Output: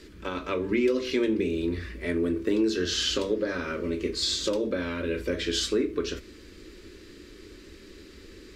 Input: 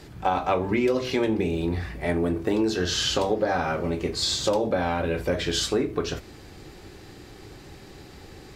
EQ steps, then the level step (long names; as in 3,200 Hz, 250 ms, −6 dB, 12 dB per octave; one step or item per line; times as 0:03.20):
high-shelf EQ 9,100 Hz −8.5 dB
phaser with its sweep stopped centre 320 Hz, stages 4
0.0 dB